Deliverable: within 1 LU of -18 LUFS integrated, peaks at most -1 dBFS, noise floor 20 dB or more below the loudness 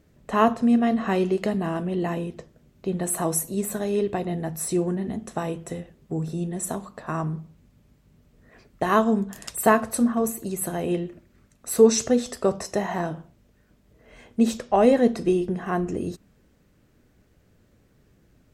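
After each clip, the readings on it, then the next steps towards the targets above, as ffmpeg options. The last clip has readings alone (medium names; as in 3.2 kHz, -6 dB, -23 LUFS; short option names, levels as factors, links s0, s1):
loudness -24.5 LUFS; peak level -5.0 dBFS; loudness target -18.0 LUFS
-> -af "volume=2.11,alimiter=limit=0.891:level=0:latency=1"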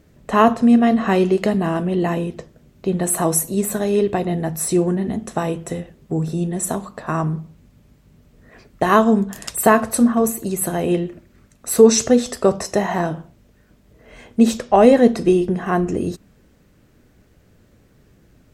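loudness -18.5 LUFS; peak level -1.0 dBFS; noise floor -55 dBFS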